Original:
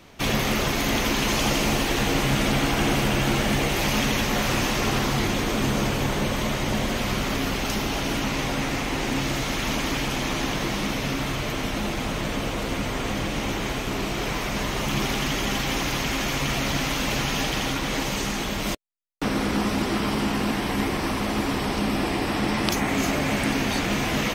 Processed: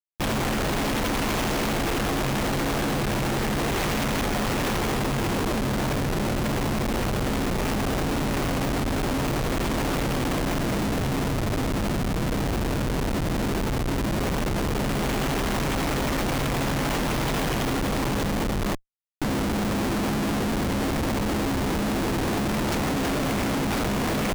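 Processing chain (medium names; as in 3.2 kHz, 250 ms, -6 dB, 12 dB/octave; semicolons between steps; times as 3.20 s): bit crusher 7-bit; Schmitt trigger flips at -25.5 dBFS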